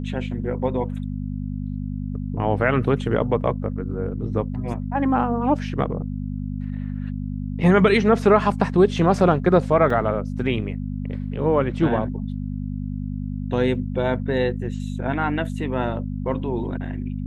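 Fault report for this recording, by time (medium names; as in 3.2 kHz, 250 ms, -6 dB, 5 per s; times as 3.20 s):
hum 50 Hz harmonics 5 -28 dBFS
9.90 s: dropout 3.3 ms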